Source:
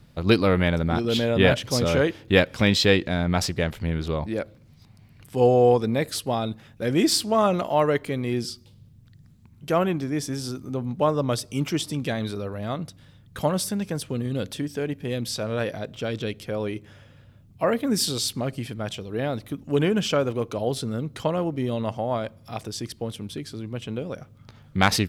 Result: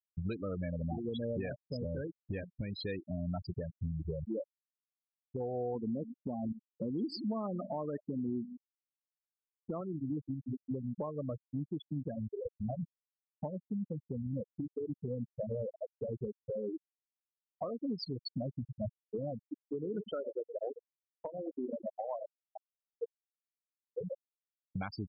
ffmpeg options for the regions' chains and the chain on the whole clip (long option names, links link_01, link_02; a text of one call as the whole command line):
ffmpeg -i in.wav -filter_complex "[0:a]asettb=1/sr,asplit=3[link_01][link_02][link_03];[link_01]atrim=end=1.854[link_04];[link_02]atrim=start=1.85:end=2.74,asetpts=PTS-STARTPTS,afade=type=in:duration=0.004:curve=qsin,afade=type=out:start_time=0.886:duration=0.004:curve=qsin,lowpass=4800,lowshelf=frequency=220:gain=8.5,bandreject=frequency=60:width_type=h:width=6,bandreject=frequency=120:width_type=h:width=6,bandreject=frequency=180:width_type=h:width=6,bandreject=frequency=240:width_type=h:width=6,bandreject=frequency=300:width_type=h:width=6,bandreject=frequency=360:width_type=h:width=6,bandreject=frequency=420:width_type=h:width=6[link_05];[link_03]atrim=start=2.736[link_06];[link_04][link_05]acrossfade=duration=0.004:curve1=hsin:curve2=qsin[link_07];[link_07][link_06]acrossfade=duration=0.004:curve1=qsin:curve2=hsin,asettb=1/sr,asplit=3[link_08][link_09][link_10];[link_08]atrim=end=5.754[link_11];[link_09]atrim=start=5.75:end=9.81,asetpts=PTS-STARTPTS,afade=type=in:duration=0.004:curve=qsin,afade=type=out:start_time=4.056:duration=0.004:curve=qsin,equalizer=frequency=240:width_type=o:width=0.75:gain=10,aecho=1:1:174:0.141,atrim=end_sample=179046[link_12];[link_10]atrim=start=9.806[link_13];[link_11][link_12]acrossfade=duration=0.004:curve1=hsin:curve2=qsin[link_14];[link_14][link_13]acrossfade=duration=0.004:curve1=qsin:curve2=hsin,asettb=1/sr,asplit=3[link_15][link_16][link_17];[link_15]atrim=end=19.454[link_18];[link_16]atrim=start=19.45:end=24,asetpts=PTS-STARTPTS,afade=type=in:duration=0.004:curve=qsin,afade=type=out:start_time=4.546:duration=0.004:curve=qsin,bass=frequency=250:gain=-7,treble=frequency=4000:gain=0,aeval=exprs='val(0)*gte(abs(val(0)),0.0355)':channel_layout=same,asplit=2[link_19][link_20];[link_20]adelay=104,lowpass=frequency=1600:poles=1,volume=-9.5dB,asplit=2[link_21][link_22];[link_22]adelay=104,lowpass=frequency=1600:poles=1,volume=0.29,asplit=2[link_23][link_24];[link_24]adelay=104,lowpass=frequency=1600:poles=1,volume=0.29[link_25];[link_19][link_21][link_23][link_25]amix=inputs=4:normalize=0,atrim=end_sample=200655[link_26];[link_17]atrim=start=23.996[link_27];[link_18][link_26]acrossfade=duration=0.004:curve1=hsin:curve2=qsin[link_28];[link_28][link_27]acrossfade=duration=0.004:curve1=qsin:curve2=hsin,afftfilt=real='re*gte(hypot(re,im),0.224)':imag='im*gte(hypot(re,im),0.224)':win_size=1024:overlap=0.75,acompressor=threshold=-33dB:ratio=6,alimiter=level_in=6dB:limit=-24dB:level=0:latency=1:release=493,volume=-6dB,volume=1.5dB" out.wav